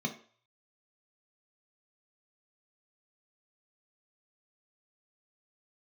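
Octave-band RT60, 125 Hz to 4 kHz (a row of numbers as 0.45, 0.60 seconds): 0.40, 0.35, 0.45, 0.50, 0.45, 0.50 seconds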